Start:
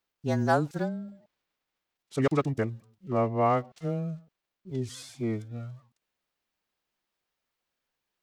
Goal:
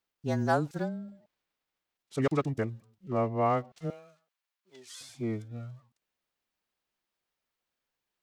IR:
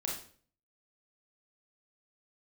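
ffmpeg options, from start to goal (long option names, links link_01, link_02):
-filter_complex "[0:a]asettb=1/sr,asplit=3[link_01][link_02][link_03];[link_01]atrim=end=3.904[link_04];[link_02]atrim=start=3.9:end=5.01,asetpts=PTS-STARTPTS,afade=type=in:duration=0.004:curve=qsin,afade=type=out:start_time=1.106:duration=0.004:curve=qsin,highpass=920[link_05];[link_03]atrim=start=5.006[link_06];[link_04][link_05]acrossfade=duration=0.004:curve1=hsin:curve2=qsin[link_07];[link_07][link_06]acrossfade=duration=0.004:curve1=qsin:curve2=hsin,volume=-2.5dB"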